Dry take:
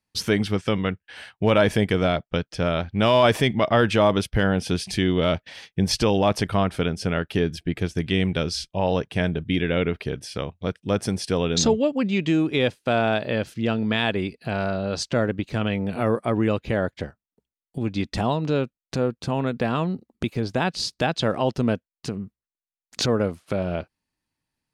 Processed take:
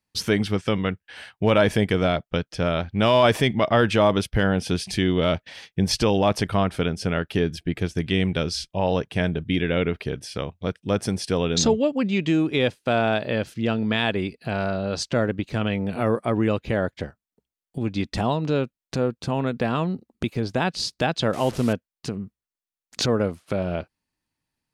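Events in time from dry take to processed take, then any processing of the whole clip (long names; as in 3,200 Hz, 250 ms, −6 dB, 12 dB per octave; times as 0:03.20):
0:21.33–0:21.73: linear delta modulator 64 kbit/s, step −32 dBFS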